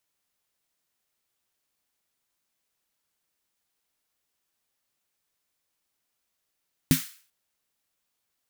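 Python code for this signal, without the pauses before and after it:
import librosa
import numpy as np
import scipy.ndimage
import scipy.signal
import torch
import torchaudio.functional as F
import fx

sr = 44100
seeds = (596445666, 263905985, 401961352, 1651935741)

y = fx.drum_snare(sr, seeds[0], length_s=0.39, hz=160.0, second_hz=260.0, noise_db=-9.0, noise_from_hz=1400.0, decay_s=0.14, noise_decay_s=0.45)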